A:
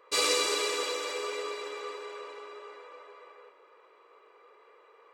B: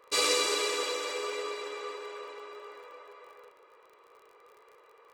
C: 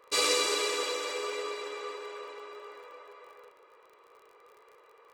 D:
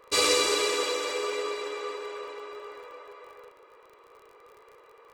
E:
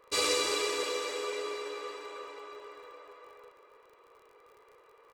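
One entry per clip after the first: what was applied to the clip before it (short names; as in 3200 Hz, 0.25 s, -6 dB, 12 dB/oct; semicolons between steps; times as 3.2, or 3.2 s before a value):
crackle 36/s -47 dBFS
nothing audible
low shelf 180 Hz +11.5 dB; gain +3 dB
feedback echo 0.321 s, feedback 51%, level -12.5 dB; gain -5.5 dB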